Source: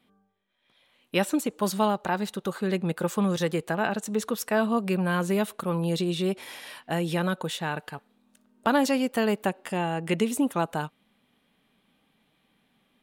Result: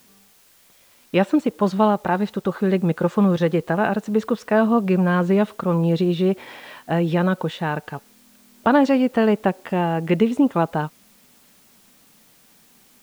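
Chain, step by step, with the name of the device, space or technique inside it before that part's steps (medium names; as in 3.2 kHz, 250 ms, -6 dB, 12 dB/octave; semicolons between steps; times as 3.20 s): cassette deck with a dirty head (tape spacing loss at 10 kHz 28 dB; wow and flutter 17 cents; white noise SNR 34 dB); trim +8.5 dB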